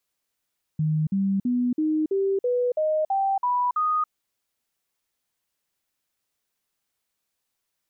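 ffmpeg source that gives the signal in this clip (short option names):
-f lavfi -i "aevalsrc='0.1*clip(min(mod(t,0.33),0.28-mod(t,0.33))/0.005,0,1)*sin(2*PI*155*pow(2,floor(t/0.33)/3)*mod(t,0.33))':d=3.3:s=44100"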